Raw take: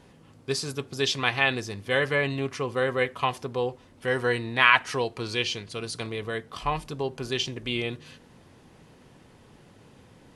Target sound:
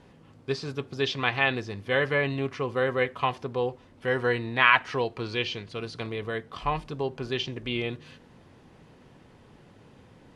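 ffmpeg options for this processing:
-filter_complex "[0:a]acrossover=split=5300[s0][s1];[s1]acompressor=threshold=0.00178:ratio=4:attack=1:release=60[s2];[s0][s2]amix=inputs=2:normalize=0,highshelf=f=6300:g=-11"

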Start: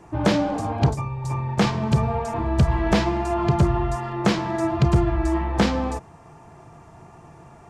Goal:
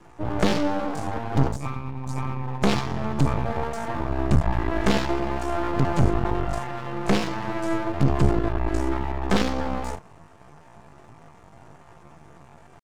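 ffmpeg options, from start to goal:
-af "atempo=0.6,aeval=exprs='max(val(0),0)':c=same,volume=1.19"

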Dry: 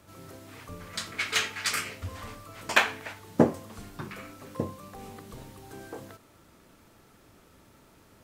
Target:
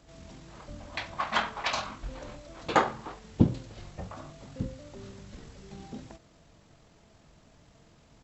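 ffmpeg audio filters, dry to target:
-af "asetrate=22050,aresample=44100,atempo=2,bandreject=f=60:t=h:w=6,bandreject=f=120:t=h:w=6"

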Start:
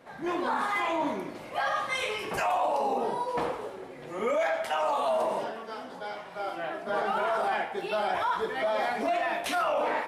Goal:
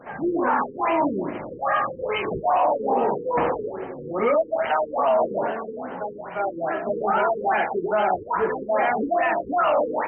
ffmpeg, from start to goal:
-filter_complex "[0:a]asplit=2[s0][s1];[s1]alimiter=level_in=1.33:limit=0.0631:level=0:latency=1:release=17,volume=0.75,volume=0.75[s2];[s0][s2]amix=inputs=2:normalize=0,afftfilt=real='re*lt(b*sr/1024,490*pow(3200/490,0.5+0.5*sin(2*PI*2.4*pts/sr)))':imag='im*lt(b*sr/1024,490*pow(3200/490,0.5+0.5*sin(2*PI*2.4*pts/sr)))':win_size=1024:overlap=0.75,volume=1.78"

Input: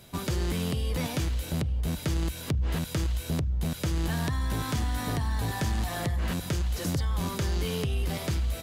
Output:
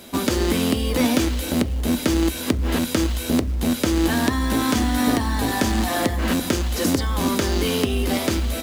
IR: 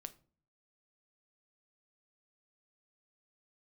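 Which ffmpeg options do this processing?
-filter_complex "[0:a]lowshelf=f=190:t=q:w=3:g=-7,acrusher=bits=6:mode=log:mix=0:aa=0.000001,asplit=2[s0][s1];[1:a]atrim=start_sample=2205,asetrate=74970,aresample=44100[s2];[s1][s2]afir=irnorm=-1:irlink=0,volume=4.22[s3];[s0][s3]amix=inputs=2:normalize=0,volume=1.41"

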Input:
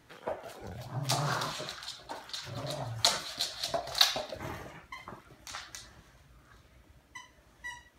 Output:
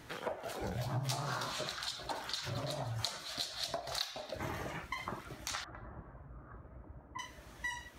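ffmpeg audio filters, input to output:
-filter_complex "[0:a]asettb=1/sr,asplit=3[s0][s1][s2];[s0]atrim=end=5.644[s3];[s1]atrim=start=5.64:end=7.19,asetpts=PTS-STARTPTS,afade=t=in:d=0.004:c=qsin,afade=t=out:st=1.546:d=0.004:c=qsin,lowpass=f=1300:w=0.5412,lowpass=f=1300:w=1.3066[s4];[s2]atrim=start=7.186[s5];[s3][s4]acrossfade=d=0.004:c1=hsin:c2=qsin[s6];[s6][s5]acrossfade=d=0.004:c1=qsin:c2=hsin,acompressor=threshold=0.00708:ratio=10,asettb=1/sr,asplit=3[s7][s8][s9];[s7]atrim=end=0.604[s10];[s8]atrim=start=0.6:end=1.63,asetpts=PTS-STARTPTS,afade=t=in:d=0.004:c=qsin,afade=t=out:st=1.026:d=0.004:c=qsin,asplit=2[s11][s12];[s12]adelay=16,volume=0.501[s13];[s11][s13]amix=inputs=2:normalize=0,atrim=end_sample=45423[s14];[s9]atrim=start=1.626[s15];[s10][s14]acrossfade=d=0.004:c1=hsin:c2=qsin[s16];[s16][s15]acrossfade=d=0.004:c1=qsin:c2=hsin,volume=2.37"

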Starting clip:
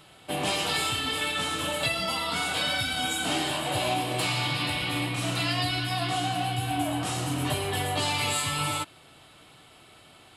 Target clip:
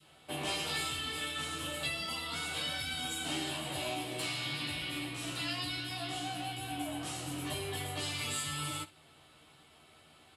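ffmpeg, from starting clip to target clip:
-filter_complex "[0:a]adynamicequalizer=threshold=0.01:dfrequency=890:dqfactor=0.71:tfrequency=890:tqfactor=0.71:attack=5:release=100:ratio=0.375:range=2.5:mode=cutabove:tftype=bell,acrossover=split=250|3500[s0][s1][s2];[s0]asoftclip=type=tanh:threshold=0.0224[s3];[s3][s1][s2]amix=inputs=3:normalize=0,aecho=1:1:13|64:0.596|0.133,volume=0.376"

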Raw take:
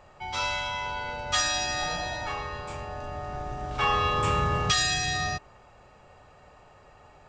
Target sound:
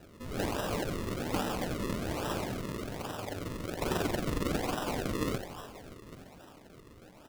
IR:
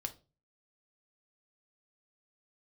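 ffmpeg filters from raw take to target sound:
-filter_complex "[0:a]lowshelf=f=130:g=-11,asplit=2[s0][s1];[s1]alimiter=limit=0.0668:level=0:latency=1,volume=0.841[s2];[s0][s2]amix=inputs=2:normalize=0,asettb=1/sr,asplit=3[s3][s4][s5];[s3]atrim=end=2.874[s6];[s4]atrim=start=2.87:end=4.87,asetpts=PTS-STARTPTS,afade=t=in:d=0.004:c=qsin,afade=t=out:st=1.996:d=0.004:c=qsin,tremolo=f=22:d=0.857[s7];[s5]atrim=start=4.866[s8];[s6][s7]acrossfade=d=0.004:c1=hsin:c2=qsin[s9];[s9][s8]acrossfade=d=0.004:c1=qsin:c2=hsin,asplit=8[s10][s11][s12][s13][s14][s15][s16][s17];[s11]adelay=286,afreqshift=59,volume=0.251[s18];[s12]adelay=572,afreqshift=118,volume=0.155[s19];[s13]adelay=858,afreqshift=177,volume=0.0966[s20];[s14]adelay=1144,afreqshift=236,volume=0.0596[s21];[s15]adelay=1430,afreqshift=295,volume=0.0372[s22];[s16]adelay=1716,afreqshift=354,volume=0.0229[s23];[s17]adelay=2002,afreqshift=413,volume=0.0143[s24];[s10][s18][s19][s20][s21][s22][s23][s24]amix=inputs=8:normalize=0,aeval=exprs='abs(val(0))':c=same,flanger=delay=0.1:depth=3.4:regen=-38:speed=0.33:shape=sinusoidal,highpass=f=150:t=q:w=0.5412,highpass=f=150:t=q:w=1.307,lowpass=f=2300:t=q:w=0.5176,lowpass=f=2300:t=q:w=0.7071,lowpass=f=2300:t=q:w=1.932,afreqshift=-51[s25];[1:a]atrim=start_sample=2205,asetrate=24255,aresample=44100[s26];[s25][s26]afir=irnorm=-1:irlink=0,acrusher=samples=39:mix=1:aa=0.000001:lfo=1:lforange=39:lforate=1.2,volume=1.33"

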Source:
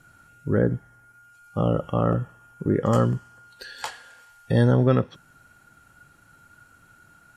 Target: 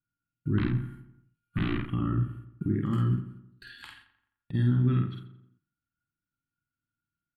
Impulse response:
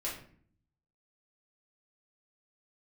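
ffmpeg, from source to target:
-filter_complex "[0:a]asettb=1/sr,asplit=3[s0][s1][s2];[s0]atrim=end=0.584[s3];[s1]atrim=start=0.58:end=1.81,asetpts=PTS-STARTPTS,afade=t=in:d=0.004:c=qsin,afade=t=out:st=1.226:d=0.004:c=qsin,aeval=exprs='0.376*(cos(1*acos(clip(val(0)/0.376,-1,1)))-cos(1*PI/2))+0.168*(cos(7*acos(clip(val(0)/0.376,-1,1)))-cos(7*PI/2))':c=same[s4];[s2]atrim=start=1.806[s5];[s3][s4]acrossfade=d=0.004:c1=hsin:c2=qsin[s6];[s6][s5]acrossfade=d=0.004:c1=qsin:c2=hsin,firequalizer=gain_entry='entry(340,0);entry(490,-30);entry(1200,-7);entry(2700,-3);entry(4000,-5);entry(5800,-24);entry(9400,-9)':delay=0.05:min_phase=1,alimiter=limit=0.1:level=0:latency=1:release=154,agate=range=0.02:threshold=0.00398:ratio=16:detection=peak,asplit=3[s7][s8][s9];[s7]afade=t=out:st=3.15:d=0.02[s10];[s8]acompressor=threshold=0.00562:ratio=5,afade=t=in:st=3.15:d=0.02,afade=t=out:st=4.53:d=0.02[s11];[s9]afade=t=in:st=4.53:d=0.02[s12];[s10][s11][s12]amix=inputs=3:normalize=0,asplit=2[s13][s14];[s14]adelay=49,volume=0.708[s15];[s13][s15]amix=inputs=2:normalize=0,asplit=2[s16][s17];[s17]adelay=86,lowpass=f=2700:p=1,volume=0.266,asplit=2[s18][s19];[s19]adelay=86,lowpass=f=2700:p=1,volume=0.52,asplit=2[s20][s21];[s21]adelay=86,lowpass=f=2700:p=1,volume=0.52,asplit=2[s22][s23];[s23]adelay=86,lowpass=f=2700:p=1,volume=0.52,asplit=2[s24][s25];[s25]adelay=86,lowpass=f=2700:p=1,volume=0.52,asplit=2[s26][s27];[s27]adelay=86,lowpass=f=2700:p=1,volume=0.52[s28];[s16][s18][s20][s22][s24][s26][s28]amix=inputs=7:normalize=0"

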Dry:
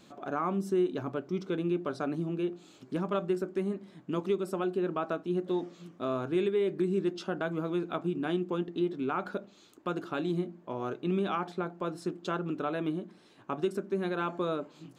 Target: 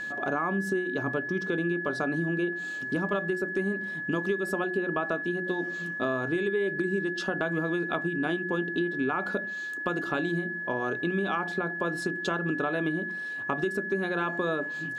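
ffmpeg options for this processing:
-af "acompressor=threshold=0.02:ratio=6,aeval=exprs='val(0)+0.00891*sin(2*PI*1700*n/s)':c=same,bandreject=f=60:t=h:w=6,bandreject=f=120:t=h:w=6,bandreject=f=180:t=h:w=6,bandreject=f=240:t=h:w=6,bandreject=f=300:t=h:w=6,bandreject=f=360:t=h:w=6,volume=2.66"

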